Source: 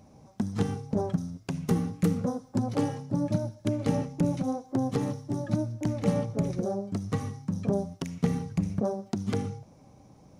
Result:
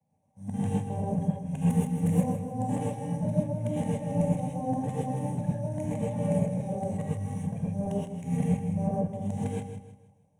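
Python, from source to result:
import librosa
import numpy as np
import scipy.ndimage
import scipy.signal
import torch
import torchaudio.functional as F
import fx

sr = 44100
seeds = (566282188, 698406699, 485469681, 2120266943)

y = fx.local_reverse(x, sr, ms=179.0)
y = scipy.signal.sosfilt(scipy.signal.butter(4, 110.0, 'highpass', fs=sr, output='sos'), y)
y = fx.peak_eq(y, sr, hz=8700.0, db=13.5, octaves=0.66)
y = fx.leveller(y, sr, passes=1)
y = fx.tilt_shelf(y, sr, db=5.0, hz=1100.0)
y = fx.fixed_phaser(y, sr, hz=1300.0, stages=6)
y = fx.echo_feedback(y, sr, ms=158, feedback_pct=44, wet_db=-8.5)
y = fx.rev_gated(y, sr, seeds[0], gate_ms=150, shape='rising', drr_db=-4.0)
y = fx.band_widen(y, sr, depth_pct=40)
y = y * 10.0 ** (-9.0 / 20.0)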